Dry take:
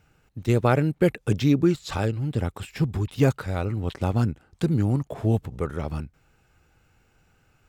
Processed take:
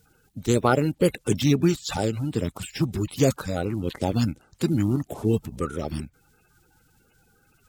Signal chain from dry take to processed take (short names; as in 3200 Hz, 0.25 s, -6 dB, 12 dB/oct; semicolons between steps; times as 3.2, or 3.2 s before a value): bin magnitudes rounded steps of 30 dB; high shelf 4100 Hz +10.5 dB